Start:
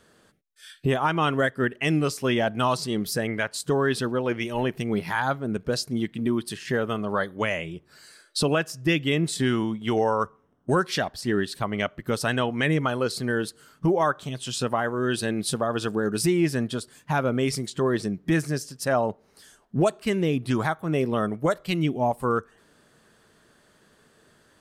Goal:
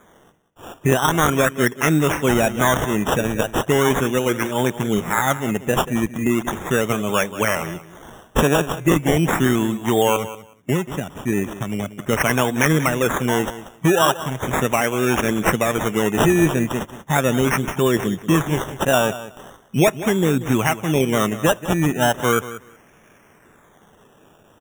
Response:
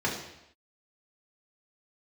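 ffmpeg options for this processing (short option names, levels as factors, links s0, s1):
-filter_complex "[0:a]highpass=f=79:w=0.5412,highpass=f=79:w=1.3066,aemphasis=mode=production:type=cd,asettb=1/sr,asplit=3[s0][s1][s2];[s0]atrim=end=10.164[s3];[s1]atrim=start=10.16:end=11.99,asetpts=PTS-STARTPTS,afade=t=in:d=0.004:c=qsin,afade=t=out:st=1.826:d=0.004:c=qsin,acrossover=split=370[s4][s5];[s5]acompressor=threshold=0.0141:ratio=6[s6];[s4][s6]amix=inputs=2:normalize=0[s7];[s2]atrim=start=11.986[s8];[s3][s7]acrossfade=d=0.004:c1=hsin:c2=qsin[s9];[s9][s8]acrossfade=d=0.004:c1=qsin:c2=hsin,acrusher=samples=16:mix=1:aa=0.000001:lfo=1:lforange=9.6:lforate=0.38,asuperstop=centerf=4500:order=12:qfactor=2.5,aecho=1:1:185|370:0.188|0.0301,volume=2"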